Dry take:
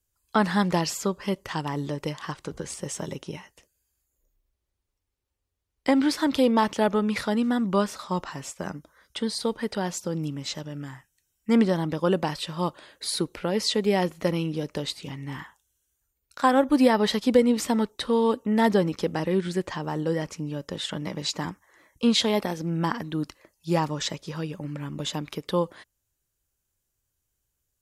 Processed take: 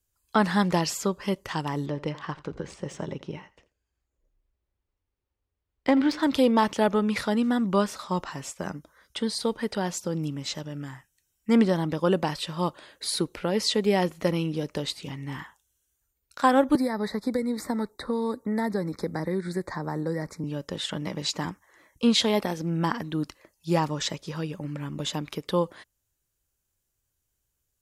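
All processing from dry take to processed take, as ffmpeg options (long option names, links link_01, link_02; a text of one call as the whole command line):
ffmpeg -i in.wav -filter_complex "[0:a]asettb=1/sr,asplit=3[link_01][link_02][link_03];[link_01]atrim=end=1.864[link_04];[link_02]atrim=start=1.86:end=6.23,asetpts=PTS-STARTPTS,afade=type=in:duration=0.004:curve=qsin,afade=type=out:start_time=4.366:duration=0.004:curve=qsin,adynamicsmooth=sensitivity=1.5:basefreq=3500,aecho=1:1:84:0.112,atrim=end_sample=192717[link_05];[link_03]atrim=start=6.226[link_06];[link_04][link_05]acrossfade=duration=0.004:curve1=hsin:curve2=qsin[link_07];[link_07][link_06]acrossfade=duration=0.004:curve1=qsin:curve2=hsin,asettb=1/sr,asplit=3[link_08][link_09][link_10];[link_08]atrim=end=16.754[link_11];[link_09]atrim=start=16.75:end=20.44,asetpts=PTS-STARTPTS,afade=type=in:duration=0.004:curve=qsin,afade=type=out:start_time=3.686:duration=0.004:curve=qsin,equalizer=frequency=6000:width=2:gain=-7.5,acrossover=split=290|1900[link_12][link_13][link_14];[link_12]acompressor=threshold=-30dB:ratio=4[link_15];[link_13]acompressor=threshold=-30dB:ratio=4[link_16];[link_14]acompressor=threshold=-39dB:ratio=4[link_17];[link_15][link_16][link_17]amix=inputs=3:normalize=0,asuperstop=centerf=2900:order=8:qfactor=1.9[link_18];[link_10]atrim=start=20.436[link_19];[link_11][link_18]acrossfade=duration=0.004:curve1=hsin:curve2=qsin[link_20];[link_20][link_19]acrossfade=duration=0.004:curve1=qsin:curve2=hsin" out.wav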